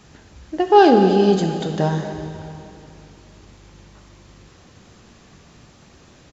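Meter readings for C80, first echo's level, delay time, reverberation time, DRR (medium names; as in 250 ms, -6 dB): 6.5 dB, -15.0 dB, 227 ms, 2.8 s, 4.5 dB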